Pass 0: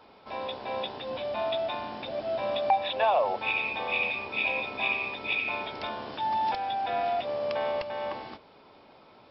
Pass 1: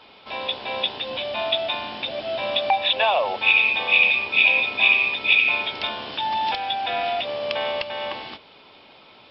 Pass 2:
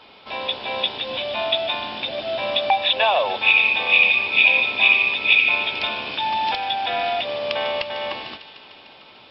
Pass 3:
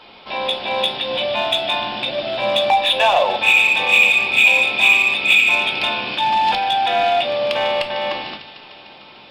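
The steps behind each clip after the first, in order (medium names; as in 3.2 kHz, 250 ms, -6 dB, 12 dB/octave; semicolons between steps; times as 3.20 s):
peaking EQ 3.1 kHz +13 dB 1.3 oct; trim +2 dB
feedback echo behind a high-pass 150 ms, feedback 78%, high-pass 1.7 kHz, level -13 dB; trim +1.5 dB
in parallel at -4 dB: hard clipper -19 dBFS, distortion -7 dB; on the sum: simulated room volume 290 m³, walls furnished, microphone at 0.88 m; trim -1 dB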